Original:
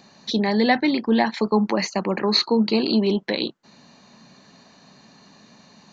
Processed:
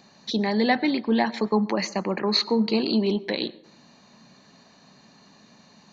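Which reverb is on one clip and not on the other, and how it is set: plate-style reverb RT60 0.67 s, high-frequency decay 0.45×, pre-delay 85 ms, DRR 19.5 dB; trim -3 dB

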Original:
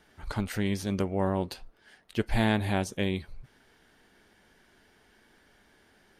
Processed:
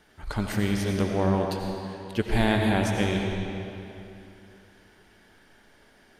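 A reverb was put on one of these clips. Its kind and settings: algorithmic reverb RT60 2.9 s, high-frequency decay 0.8×, pre-delay 50 ms, DRR 1 dB; trim +2 dB

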